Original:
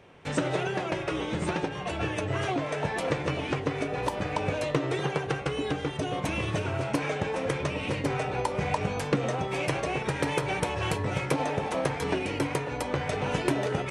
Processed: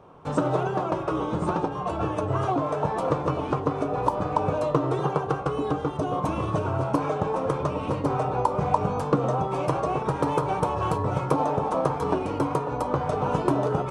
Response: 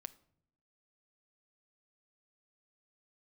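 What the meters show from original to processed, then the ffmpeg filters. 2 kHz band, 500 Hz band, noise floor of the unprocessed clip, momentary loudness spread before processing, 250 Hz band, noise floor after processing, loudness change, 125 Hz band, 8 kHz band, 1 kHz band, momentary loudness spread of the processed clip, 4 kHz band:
−7.0 dB, +4.0 dB, −35 dBFS, 2 LU, +3.5 dB, −32 dBFS, +3.5 dB, +3.5 dB, −6.0 dB, +7.0 dB, 3 LU, −8.0 dB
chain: -filter_complex "[0:a]highshelf=frequency=1500:width_type=q:width=3:gain=-8.5,asplit=2[link_01][link_02];[1:a]atrim=start_sample=2205[link_03];[link_02][link_03]afir=irnorm=-1:irlink=0,volume=13.5dB[link_04];[link_01][link_04]amix=inputs=2:normalize=0,volume=-8.5dB"

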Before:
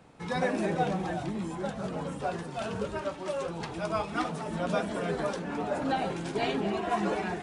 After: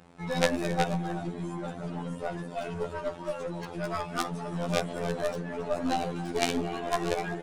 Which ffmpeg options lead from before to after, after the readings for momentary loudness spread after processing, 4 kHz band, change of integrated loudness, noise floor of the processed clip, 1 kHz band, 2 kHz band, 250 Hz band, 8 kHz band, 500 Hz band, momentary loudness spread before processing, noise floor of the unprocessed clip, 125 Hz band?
8 LU, +3.0 dB, 0.0 dB, −41 dBFS, −1.0 dB, 0.0 dB, −0.5 dB, +5.5 dB, 0.0 dB, 6 LU, −40 dBFS, +1.5 dB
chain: -af "aecho=1:1:277:0.211,afftfilt=real='hypot(re,im)*cos(PI*b)':imag='0':win_size=2048:overlap=0.75,aeval=exprs='0.211*(cos(1*acos(clip(val(0)/0.211,-1,1)))-cos(1*PI/2))+0.0668*(cos(2*acos(clip(val(0)/0.211,-1,1)))-cos(2*PI/2))+0.0237*(cos(3*acos(clip(val(0)/0.211,-1,1)))-cos(3*PI/2))+0.0596*(cos(4*acos(clip(val(0)/0.211,-1,1)))-cos(4*PI/2))':channel_layout=same,volume=8dB"

